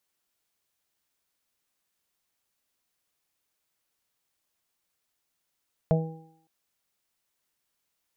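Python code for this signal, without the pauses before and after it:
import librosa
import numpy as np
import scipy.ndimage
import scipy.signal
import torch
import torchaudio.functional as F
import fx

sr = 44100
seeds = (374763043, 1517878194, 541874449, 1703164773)

y = fx.additive(sr, length_s=0.56, hz=161.0, level_db=-18, upper_db=(-18.0, -6, -3.0, -18.5), decay_s=0.58, upper_decays_s=(0.9, 0.57, 0.22, 0.93))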